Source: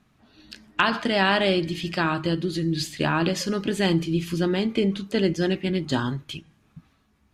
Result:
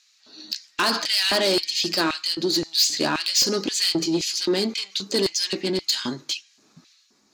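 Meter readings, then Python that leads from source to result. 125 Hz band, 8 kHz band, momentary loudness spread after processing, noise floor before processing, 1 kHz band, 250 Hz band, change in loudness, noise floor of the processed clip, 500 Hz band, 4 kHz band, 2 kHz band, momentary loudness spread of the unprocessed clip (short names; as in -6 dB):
-11.0 dB, +14.0 dB, 9 LU, -64 dBFS, -2.5 dB, -3.5 dB, +2.0 dB, -61 dBFS, -0.5 dB, +9.0 dB, -2.0 dB, 6 LU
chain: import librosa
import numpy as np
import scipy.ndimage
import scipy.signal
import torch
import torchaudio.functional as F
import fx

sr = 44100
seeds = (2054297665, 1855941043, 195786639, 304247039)

y = fx.band_shelf(x, sr, hz=5400.0, db=15.0, octaves=1.1)
y = 10.0 ** (-19.0 / 20.0) * np.tanh(y / 10.0 ** (-19.0 / 20.0))
y = fx.filter_lfo_highpass(y, sr, shape='square', hz=1.9, low_hz=310.0, high_hz=2500.0, q=1.4)
y = y * librosa.db_to_amplitude(3.0)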